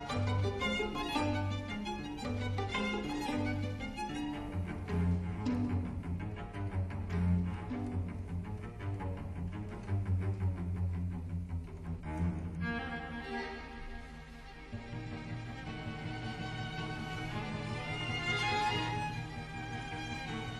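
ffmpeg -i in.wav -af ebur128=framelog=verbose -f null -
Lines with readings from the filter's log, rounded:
Integrated loudness:
  I:         -37.5 LUFS
  Threshold: -47.6 LUFS
Loudness range:
  LRA:         6.0 LU
  Threshold: -57.9 LUFS
  LRA low:   -42.1 LUFS
  LRA high:  -36.1 LUFS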